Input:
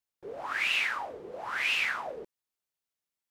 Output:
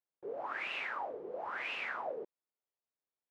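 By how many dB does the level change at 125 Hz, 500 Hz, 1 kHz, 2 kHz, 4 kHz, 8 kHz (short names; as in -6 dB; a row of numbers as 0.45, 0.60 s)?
n/a, -0.5 dB, -3.5 dB, -10.0 dB, -13.5 dB, under -20 dB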